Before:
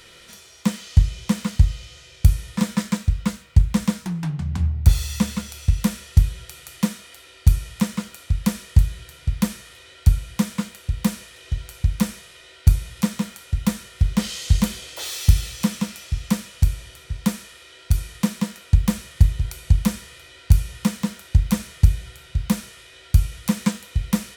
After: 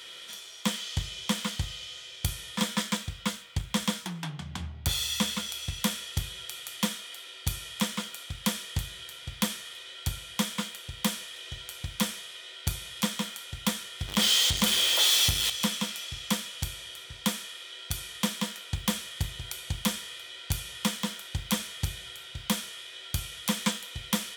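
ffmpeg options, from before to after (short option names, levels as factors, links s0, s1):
-filter_complex "[0:a]asettb=1/sr,asplit=3[s0][s1][s2];[s0]atrim=end=14.084[s3];[s1]atrim=start=14.08:end=15.5,asetpts=PTS-STARTPTS,afade=t=in:d=0.004:c=qsin,afade=t=out:st=1.416:d=0.004:c=qsin,aeval=exprs='val(0)+0.5*0.0596*sgn(val(0))':c=same[s4];[s2]atrim=start=15.496[s5];[s3][s4]acrossfade=d=0.004:c1=hsin:c2=qsin[s6];[s6][s5]acrossfade=d=0.004:c1=qsin:c2=hsin,highpass=f=600:p=1,equalizer=f=3300:w=6.6:g=11"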